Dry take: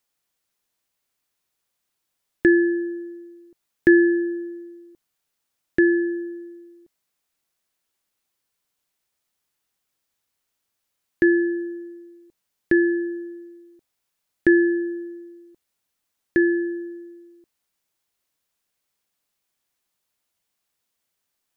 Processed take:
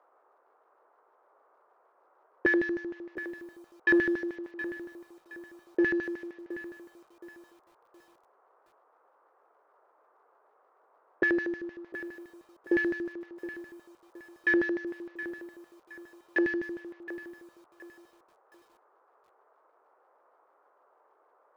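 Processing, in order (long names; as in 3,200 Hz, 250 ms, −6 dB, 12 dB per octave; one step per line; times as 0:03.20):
variable-slope delta modulation 32 kbit/s
auto-filter band-pass square 6.5 Hz 510–1,900 Hz
noise in a band 390–1,300 Hz −66 dBFS
feedback echo at a low word length 719 ms, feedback 35%, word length 9 bits, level −13 dB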